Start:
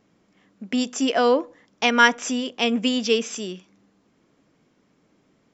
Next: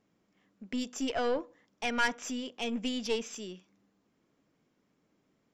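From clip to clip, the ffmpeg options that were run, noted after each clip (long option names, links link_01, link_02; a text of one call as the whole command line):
ffmpeg -i in.wav -af "aeval=exprs='(tanh(3.98*val(0)+0.55)-tanh(0.55))/3.98':channel_layout=same,volume=-8dB" out.wav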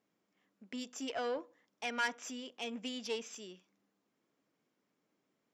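ffmpeg -i in.wav -af "highpass=frequency=300:poles=1,volume=-5dB" out.wav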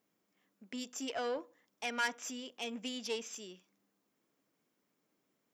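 ffmpeg -i in.wav -af "highshelf=frequency=9100:gain=10.5" out.wav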